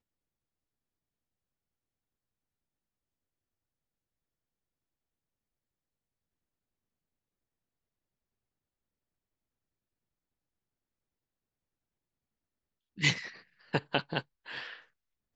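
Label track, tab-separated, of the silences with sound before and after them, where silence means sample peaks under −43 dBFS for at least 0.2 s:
13.360000	13.730000	silence
14.210000	14.470000	silence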